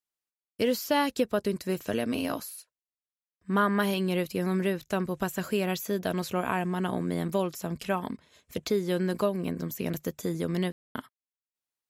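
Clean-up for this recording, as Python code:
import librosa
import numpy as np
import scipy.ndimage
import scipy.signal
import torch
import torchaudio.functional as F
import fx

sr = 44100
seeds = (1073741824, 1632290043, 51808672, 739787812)

y = fx.fix_ambience(x, sr, seeds[0], print_start_s=8.16, print_end_s=8.66, start_s=10.72, end_s=10.95)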